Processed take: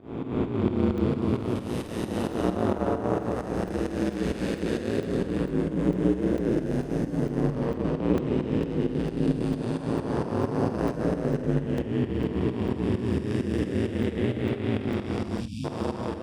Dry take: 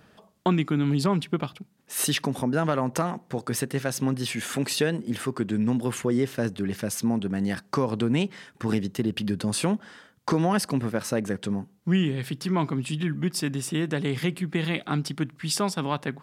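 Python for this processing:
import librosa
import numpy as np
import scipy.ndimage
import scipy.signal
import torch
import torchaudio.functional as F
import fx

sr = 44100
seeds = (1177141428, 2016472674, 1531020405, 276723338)

y = fx.spec_blur(x, sr, span_ms=806.0)
y = fx.recorder_agc(y, sr, target_db=-22.0, rise_db_per_s=9.1, max_gain_db=30)
y = fx.lowpass(y, sr, hz=2900.0, slope=6)
y = fx.peak_eq(y, sr, hz=440.0, db=8.0, octaves=2.2)
y = y + 10.0 ** (-5.5 / 20.0) * np.pad(y, (int(268 * sr / 1000.0), 0))[:len(y)]
y = fx.volume_shaper(y, sr, bpm=132, per_beat=2, depth_db=-19, release_ms=189.0, shape='fast start')
y = fx.spec_erase(y, sr, start_s=15.4, length_s=0.24, low_hz=250.0, high_hz=2300.0)
y = y * np.sin(2.0 * np.pi * 57.0 * np.arange(len(y)) / sr)
y = fx.room_early_taps(y, sr, ms=(49, 76), db=(-10.5, -16.0))
y = fx.buffer_crackle(y, sr, first_s=0.98, period_s=0.45, block=128, kind='zero')
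y = y * librosa.db_to_amplitude(3.0)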